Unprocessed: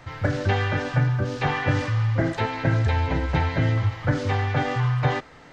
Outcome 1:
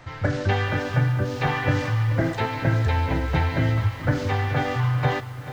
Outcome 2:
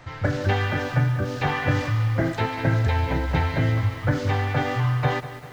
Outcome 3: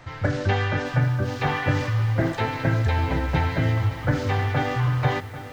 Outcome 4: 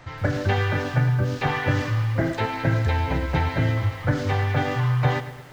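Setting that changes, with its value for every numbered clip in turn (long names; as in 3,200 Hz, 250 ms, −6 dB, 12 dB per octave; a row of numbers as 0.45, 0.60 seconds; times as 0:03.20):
feedback echo at a low word length, delay time: 434, 195, 790, 112 milliseconds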